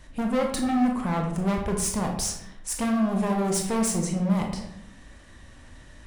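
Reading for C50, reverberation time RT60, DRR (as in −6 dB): 5.0 dB, 0.80 s, 1.5 dB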